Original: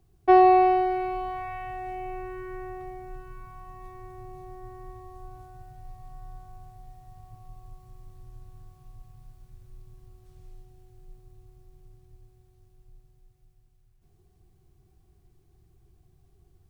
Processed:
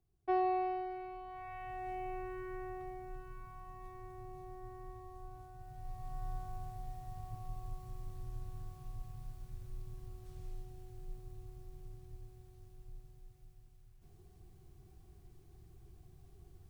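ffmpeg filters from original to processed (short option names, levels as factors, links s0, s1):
-af "volume=1.33,afade=t=in:st=1.26:d=0.66:silence=0.316228,afade=t=in:st=5.57:d=0.72:silence=0.375837"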